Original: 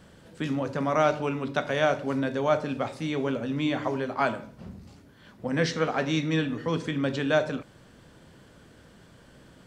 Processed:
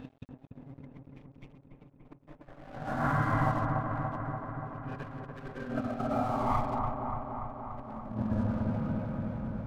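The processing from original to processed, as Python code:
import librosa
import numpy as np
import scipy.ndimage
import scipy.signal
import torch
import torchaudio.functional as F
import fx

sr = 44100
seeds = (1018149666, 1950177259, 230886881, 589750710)

y = fx.tracing_dist(x, sr, depth_ms=0.23)
y = fx.dereverb_blind(y, sr, rt60_s=1.3)
y = fx.env_lowpass_down(y, sr, base_hz=670.0, full_db=-21.5)
y = fx.paulstretch(y, sr, seeds[0], factor=9.5, window_s=0.1, from_s=3.47)
y = fx.tilt_eq(y, sr, slope=-3.5)
y = fx.cheby_harmonics(y, sr, harmonics=(5, 8), levels_db=(-26, -31), full_scale_db=-5.0)
y = fx.over_compress(y, sr, threshold_db=-33.0, ratio=-0.5)
y = fx.peak_eq(y, sr, hz=400.0, db=-10.0, octaves=1.2)
y = np.sign(y) * np.maximum(np.abs(y) - 10.0 ** (-48.5 / 20.0), 0.0)
y = fx.echo_wet_lowpass(y, sr, ms=289, feedback_pct=71, hz=1400.0, wet_db=-3)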